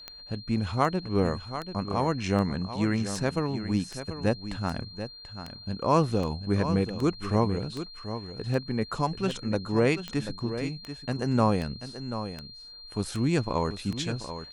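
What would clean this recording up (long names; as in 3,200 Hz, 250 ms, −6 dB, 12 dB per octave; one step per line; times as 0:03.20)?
click removal
notch filter 4,200 Hz, Q 30
echo removal 736 ms −10.5 dB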